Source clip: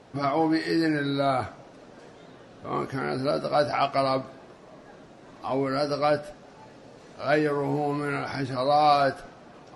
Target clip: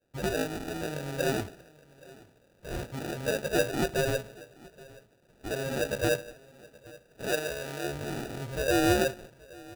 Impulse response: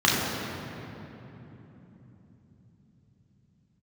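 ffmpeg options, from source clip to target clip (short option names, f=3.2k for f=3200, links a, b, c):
-filter_complex "[0:a]agate=range=-33dB:threshold=-41dB:ratio=3:detection=peak,aecho=1:1:1.6:0.66,acrusher=samples=41:mix=1:aa=0.000001,asettb=1/sr,asplit=3[a][b][c];[a]atrim=end=7.284[d];[b]atrim=start=7.28:end=7.84,asetpts=PTS-STARTPTS,afade=t=in:d=0.004:c=qsin,afade=t=out:st=0.556:d=0.004:c=qsin,lowshelf=f=370:g=-8.5[e];[c]atrim=start=7.836[f];[d][e]acrossfade=d=0.004:c1=hsin:c2=qsin[g];[g][f]acrossfade=d=0.004:c1=qsin:c2=hsin,aecho=1:1:824:0.075,volume=-7dB"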